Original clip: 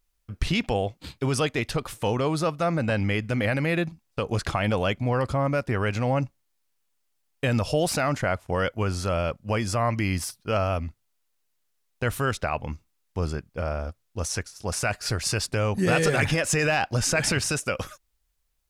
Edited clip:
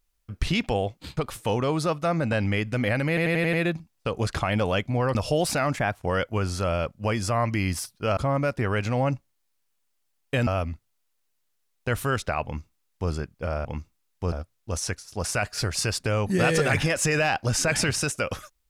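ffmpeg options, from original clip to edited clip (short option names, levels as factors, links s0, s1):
-filter_complex "[0:a]asplit=14[s0][s1][s2][s3][s4][s5][s6][s7][s8][s9][s10][s11][s12][s13];[s0]atrim=end=1.172[s14];[s1]atrim=start=1.738:end=3.742[s15];[s2]atrim=start=3.648:end=3.742[s16];[s3]atrim=start=3.648:end=3.742[s17];[s4]atrim=start=3.648:end=3.742[s18];[s5]atrim=start=3.648:end=3.742[s19];[s6]atrim=start=3.648:end=5.272[s20];[s7]atrim=start=7.568:end=8.174[s21];[s8]atrim=start=8.17:end=8.45,asetpts=PTS-STARTPTS,asetrate=49392,aresample=44100[s22];[s9]atrim=start=8.446:end=10.622[s23];[s10]atrim=start=5.268:end=7.572[s24];[s11]atrim=start=10.618:end=13.802[s25];[s12]atrim=start=12.588:end=13.262[s26];[s13]atrim=start=13.798[s27];[s14][s15]acrossfade=d=0.004:c1=hsin:c2=hsin[s28];[s28][s16]acrossfade=d=0.004:c1=hsin:c2=hsin[s29];[s29][s17]acrossfade=d=0.004:c1=hsin:c2=hsin[s30];[s30][s18]acrossfade=d=0.004:c1=hsin:c2=hsin[s31];[s31][s19]acrossfade=d=0.004:c1=hsin:c2=hsin[s32];[s32][s20]acrossfade=d=0.004:c1=hsin:c2=hsin[s33];[s33][s21]acrossfade=d=0.004:c1=hsin:c2=hsin[s34];[s34][s22]acrossfade=d=0.004:c1=hsin:c2=hsin[s35];[s35][s23]acrossfade=d=0.004:c1=hsin:c2=hsin[s36];[s36][s24]acrossfade=d=0.004:c1=hsin:c2=hsin[s37];[s37][s25]acrossfade=d=0.004:c1=hsin:c2=hsin[s38];[s38][s26]acrossfade=d=0.004:c1=hsin:c2=hsin[s39];[s39][s27]acrossfade=d=0.004:c1=hsin:c2=hsin"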